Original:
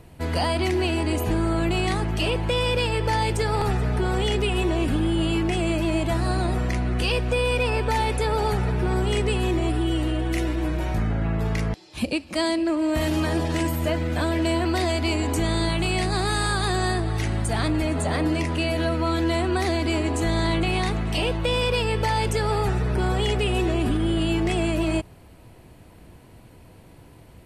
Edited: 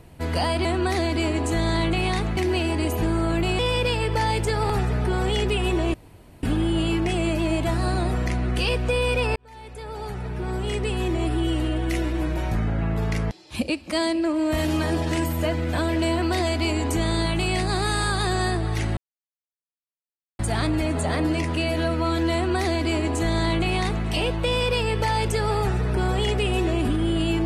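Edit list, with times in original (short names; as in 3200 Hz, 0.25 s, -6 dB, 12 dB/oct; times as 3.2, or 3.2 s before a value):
1.87–2.51 cut
4.86 insert room tone 0.49 s
7.79–9.85 fade in
17.4 insert silence 1.42 s
19.35–21.07 copy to 0.65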